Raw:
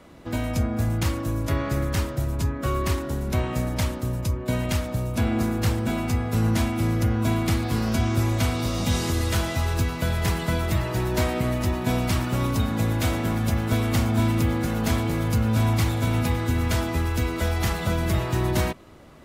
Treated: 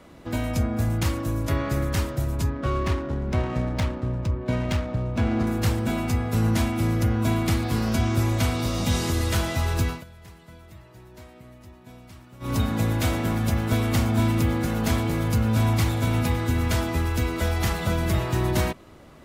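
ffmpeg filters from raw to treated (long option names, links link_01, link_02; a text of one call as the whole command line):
ffmpeg -i in.wav -filter_complex "[0:a]asettb=1/sr,asplit=3[link_01][link_02][link_03];[link_01]atrim=end=2.504[link_04];[link_02]atrim=start=2.5:end=5.47,asetpts=PTS-STARTPTS,afade=type=in:duration=0.004:curve=qsin,afade=type=out:start_time=2.966:duration=0.004:curve=qsin,adynamicsmooth=sensitivity=5.5:basefreq=1400[link_05];[link_03]atrim=start=5.466[link_06];[link_04][link_05]acrossfade=duration=0.004:curve1=hsin:curve2=qsin[link_07];[link_07][link_06]acrossfade=duration=0.004:curve1=qsin:curve2=hsin,asplit=3[link_08][link_09][link_10];[link_08]atrim=end=10.04,asetpts=PTS-STARTPTS,afade=type=out:start_time=9.9:duration=0.14:silence=0.0749894[link_11];[link_09]atrim=start=10.04:end=12.4,asetpts=PTS-STARTPTS,volume=-22.5dB[link_12];[link_10]atrim=start=12.4,asetpts=PTS-STARTPTS,afade=type=in:duration=0.14:silence=0.0749894[link_13];[link_11][link_12][link_13]concat=n=3:v=0:a=1" out.wav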